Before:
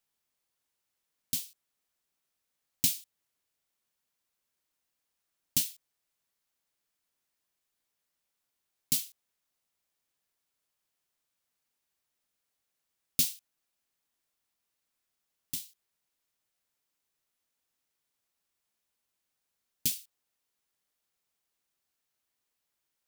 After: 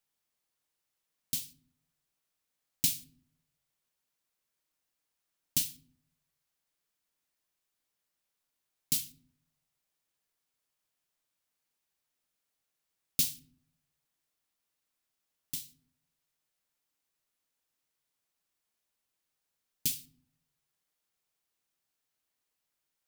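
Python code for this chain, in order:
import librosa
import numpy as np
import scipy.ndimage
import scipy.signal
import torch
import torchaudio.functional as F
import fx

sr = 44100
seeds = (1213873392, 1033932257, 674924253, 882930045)

y = fx.room_shoebox(x, sr, seeds[0], volume_m3=810.0, walls='furnished', distance_m=0.54)
y = F.gain(torch.from_numpy(y), -1.5).numpy()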